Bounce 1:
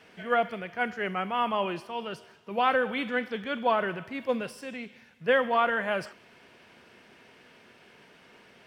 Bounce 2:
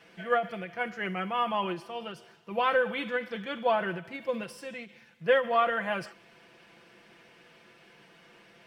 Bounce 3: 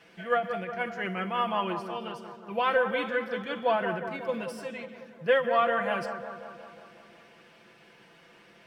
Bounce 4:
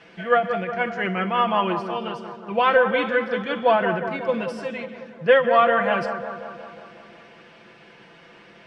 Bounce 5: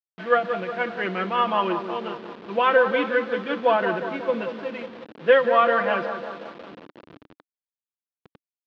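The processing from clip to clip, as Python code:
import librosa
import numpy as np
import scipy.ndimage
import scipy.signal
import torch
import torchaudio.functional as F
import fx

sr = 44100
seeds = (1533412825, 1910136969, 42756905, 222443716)

y1 = x + 0.63 * np.pad(x, (int(5.9 * sr / 1000.0), 0))[:len(x)]
y1 = fx.end_taper(y1, sr, db_per_s=190.0)
y1 = F.gain(torch.from_numpy(y1), -2.5).numpy()
y2 = fx.echo_bbd(y1, sr, ms=181, stages=2048, feedback_pct=63, wet_db=-8.5)
y3 = fx.air_absorb(y2, sr, metres=84.0)
y3 = F.gain(torch.from_numpy(y3), 8.0).numpy()
y4 = fx.delta_hold(y3, sr, step_db=-33.0)
y4 = fx.cabinet(y4, sr, low_hz=240.0, low_slope=12, high_hz=3700.0, hz=(300.0, 730.0, 2100.0), db=(5, -4, -3))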